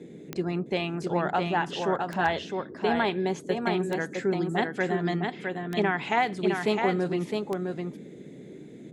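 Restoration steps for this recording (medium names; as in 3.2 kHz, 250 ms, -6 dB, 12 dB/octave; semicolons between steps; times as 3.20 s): clip repair -12 dBFS; de-click; noise print and reduce 29 dB; inverse comb 660 ms -4.5 dB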